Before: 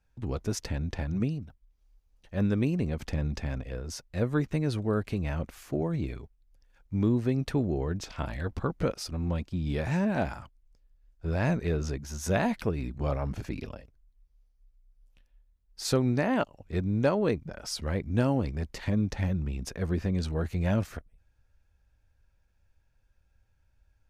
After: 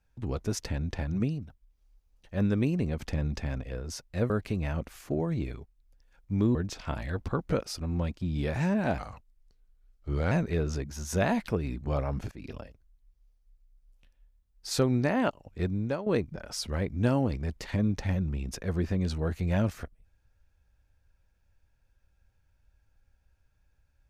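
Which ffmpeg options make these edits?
-filter_complex "[0:a]asplit=7[a][b][c][d][e][f][g];[a]atrim=end=4.302[h];[b]atrim=start=4.918:end=7.172[i];[c]atrim=start=7.858:end=10.294[j];[d]atrim=start=10.29:end=11.45,asetpts=PTS-STARTPTS,asetrate=38367,aresample=44100[k];[e]atrim=start=11.446:end=13.45,asetpts=PTS-STARTPTS,afade=t=out:st=2:d=0.004:c=hsin:silence=0.0944061[l];[f]atrim=start=13.45:end=17.2,asetpts=PTS-STARTPTS,afade=t=in:d=0.26:silence=0.0944061,afade=t=out:st=3.33:d=0.42:silence=0.223872[m];[g]atrim=start=17.2,asetpts=PTS-STARTPTS,afade=t=in:d=0.004:c=hsin:silence=0.223872[n];[h][i]acrossfade=d=0.004:c1=hsin:c2=hsin[o];[o][j]acrossfade=d=0.004:c1=hsin:c2=hsin[p];[p][k]acrossfade=d=0.004:c1=hsin:c2=hsin[q];[l][m][n]concat=n=3:v=0:a=1[r];[q][r]acrossfade=d=0.004:c1=hsin:c2=hsin"

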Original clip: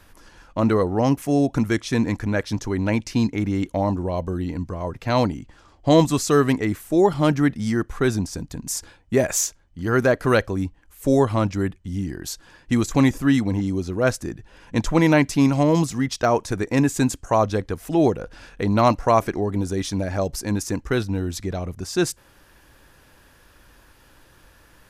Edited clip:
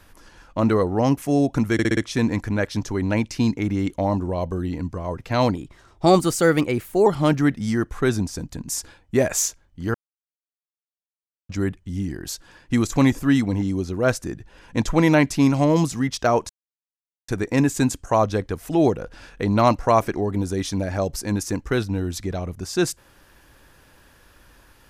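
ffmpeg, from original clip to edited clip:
-filter_complex "[0:a]asplit=10[a][b][c][d][e][f][g][h][i][j];[a]atrim=end=1.792[k];[b]atrim=start=1.728:end=1.792[l];[c]atrim=start=1.728:end=1.792[m];[d]atrim=start=1.728:end=1.792[n];[e]atrim=start=1.728:end=5.314[o];[f]atrim=start=5.31:end=7.05,asetpts=PTS-STARTPTS,asetrate=50715,aresample=44100,atrim=end_sample=66725,asetpts=PTS-STARTPTS[p];[g]atrim=start=7.046:end=9.93,asetpts=PTS-STARTPTS,afade=t=out:st=2.88:d=0.004:c=hsin[q];[h]atrim=start=9.93:end=11.48,asetpts=PTS-STARTPTS,volume=0[r];[i]atrim=start=11.48:end=16.48,asetpts=PTS-STARTPTS,afade=t=in:d=0.004:c=hsin,afade=t=out:st=4.996:d=0.004:c=hsin,apad=pad_dur=0.79[s];[j]atrim=start=16.48,asetpts=PTS-STARTPTS,afade=t=in:d=0.004:c=hsin[t];[k][l]acrossfade=d=0.004:c1=hsin:c2=hsin[u];[u][m]acrossfade=d=0.004:c1=hsin:c2=hsin[v];[v][n]acrossfade=d=0.004:c1=hsin:c2=hsin[w];[w][o]acrossfade=d=0.004:c1=hsin:c2=hsin[x];[x][p]acrossfade=d=0.004:c1=hsin:c2=hsin[y];[q][r][s][t]concat=n=4:v=0:a=1[z];[y][z]acrossfade=d=0.004:c1=hsin:c2=hsin"

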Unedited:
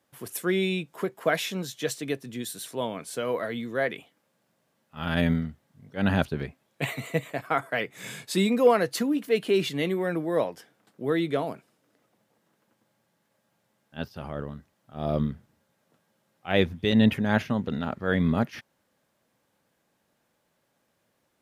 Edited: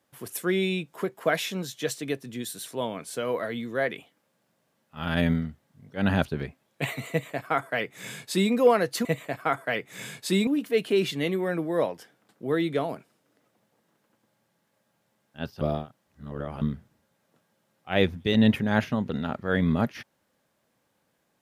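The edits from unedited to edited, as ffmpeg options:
-filter_complex "[0:a]asplit=5[a][b][c][d][e];[a]atrim=end=9.052[f];[b]atrim=start=7.098:end=8.522[g];[c]atrim=start=9.048:end=14.192[h];[d]atrim=start=14.188:end=15.192,asetpts=PTS-STARTPTS,areverse[i];[e]atrim=start=15.188[j];[f][g]acrossfade=d=0.004:c1=hsin:c2=hsin[k];[k][h]acrossfade=d=0.004:c1=hsin:c2=hsin[l];[l][i]acrossfade=d=0.004:c1=hsin:c2=hsin[m];[m][j]acrossfade=d=0.004:c1=hsin:c2=hsin"

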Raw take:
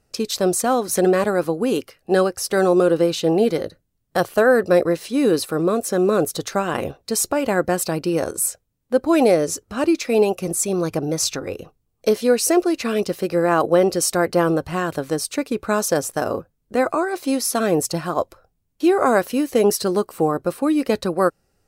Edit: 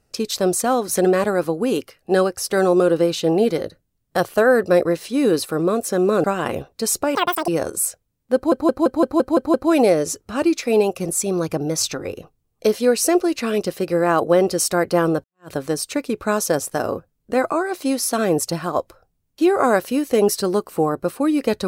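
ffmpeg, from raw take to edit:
-filter_complex "[0:a]asplit=12[a][b][c][d][e][f][g][h][i][j][k][l];[a]atrim=end=6.242[m];[b]atrim=start=6.528:end=7.444[n];[c]atrim=start=7.44:end=8.09,asetpts=PTS-STARTPTS,asetrate=86877,aresample=44100[o];[d]atrim=start=8.086:end=9.132[p];[e]atrim=start=8.958:end=9.132[q];[f]atrim=start=8.958:end=9.132[r];[g]atrim=start=8.958:end=9.132[s];[h]atrim=start=8.958:end=9.132[t];[i]atrim=start=8.958:end=9.132[u];[j]atrim=start=8.958:end=9.132[v];[k]atrim=start=8.958:end=14.66,asetpts=PTS-STARTPTS,afade=t=out:st=5.698:d=0.004:c=hsin[w];[l]atrim=start=14.66,asetpts=PTS-STARTPTS,afade=t=in:d=0.26:c=exp[x];[m][n]acrossfade=d=0.004:c1=hsin:c2=hsin[y];[y][o]acrossfade=d=0.004:c1=hsin:c2=hsin[z];[z][p]acrossfade=d=0.004:c1=hsin:c2=hsin[aa];[aa][q]acrossfade=d=0.004:c1=hsin:c2=hsin[ab];[ab][r]acrossfade=d=0.004:c1=hsin:c2=hsin[ac];[ac][s]acrossfade=d=0.004:c1=hsin:c2=hsin[ad];[ad][t]acrossfade=d=0.004:c1=hsin:c2=hsin[ae];[ae][u]acrossfade=d=0.004:c1=hsin:c2=hsin[af];[af][v]acrossfade=d=0.004:c1=hsin:c2=hsin[ag];[w][x]concat=n=2:v=0:a=1[ah];[ag][ah]acrossfade=d=0.004:c1=hsin:c2=hsin"

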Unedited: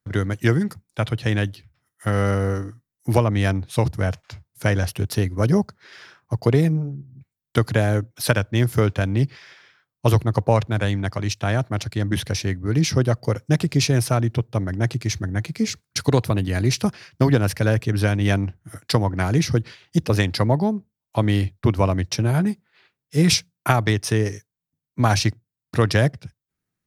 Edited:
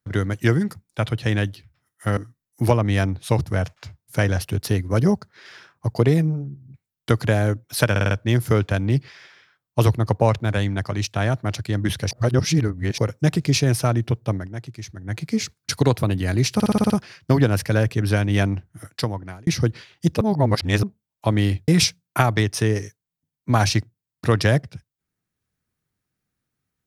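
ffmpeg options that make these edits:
-filter_complex "[0:a]asplit=20[a][b][c][d][e][f][g][h][i][j][k][l][m][n][o][p][q][r][s][t];[a]atrim=end=2.172[u];[b]atrim=start=2.638:end=8.432[v];[c]atrim=start=8.378:end=8.432[w];[d]atrim=start=8.378:end=8.432[x];[e]atrim=start=8.378:end=8.432[y];[f]atrim=start=8.378:end=12.382[z];[g]atrim=start=12.378:end=13.252,asetpts=PTS-STARTPTS,areverse[aa];[h]atrim=start=13.248:end=14.76,asetpts=PTS-STARTPTS,afade=t=out:st=1.352:d=0.16:silence=0.281838[ab];[i]atrim=start=14.76:end=15.3,asetpts=PTS-STARTPTS,volume=-11dB[ac];[j]atrim=start=15.3:end=16.872,asetpts=PTS-STARTPTS,afade=t=in:d=0.16:silence=0.281838[ad];[k]atrim=start=16.808:end=16.872[ae];[l]atrim=start=16.808:end=16.872[af];[m]atrim=start=16.808:end=16.872[ag];[n]atrim=start=16.808:end=16.872[ah];[o]atrim=start=16.808:end=16.872[ai];[p]atrim=start=16.808:end=19.38,asetpts=PTS-STARTPTS,afade=t=out:st=1.802:d=0.77[aj];[q]atrim=start=19.38:end=20.122,asetpts=PTS-STARTPTS,afade=t=in:d=0.004:c=hsin[ak];[r]atrim=start=20.118:end=20.742,asetpts=PTS-STARTPTS,areverse[al];[s]atrim=start=20.738:end=21.592[am];[t]atrim=start=23.178[an];[u][v]acrossfade=d=0.004:c1=hsin:c2=hsin[ao];[ao][w]acrossfade=d=0.004:c1=hsin:c2=hsin[ap];[ap][x]acrossfade=d=0.004:c1=hsin:c2=hsin[aq];[aq][y]acrossfade=d=0.004:c1=hsin:c2=hsin[ar];[ar][z]acrossfade=d=0.004:c1=hsin:c2=hsin[as];[as][aa]acrossfade=d=0.004:c1=hsin:c2=hsin[at];[ab][ac][ad]concat=n=3:v=0:a=1[au];[at][au]acrossfade=d=0.004:c1=hsin:c2=hsin[av];[av][ae]acrossfade=d=0.004:c1=hsin:c2=hsin[aw];[aw][af]acrossfade=d=0.004:c1=hsin:c2=hsin[ax];[ax][ag]acrossfade=d=0.004:c1=hsin:c2=hsin[ay];[ay][ah]acrossfade=d=0.004:c1=hsin:c2=hsin[az];[az][ai]acrossfade=d=0.004:c1=hsin:c2=hsin[ba];[aj][ak]concat=n=2:v=0:a=1[bb];[ba][bb]acrossfade=d=0.004:c1=hsin:c2=hsin[bc];[bc][al]acrossfade=d=0.004:c1=hsin:c2=hsin[bd];[bd][am]acrossfade=d=0.004:c1=hsin:c2=hsin[be];[be][an]acrossfade=d=0.004:c1=hsin:c2=hsin"

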